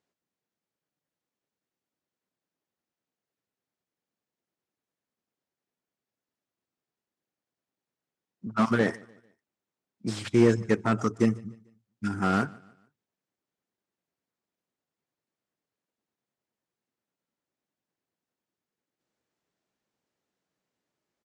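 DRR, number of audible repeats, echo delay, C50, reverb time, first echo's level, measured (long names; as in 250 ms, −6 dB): no reverb audible, 2, 148 ms, no reverb audible, no reverb audible, −24.0 dB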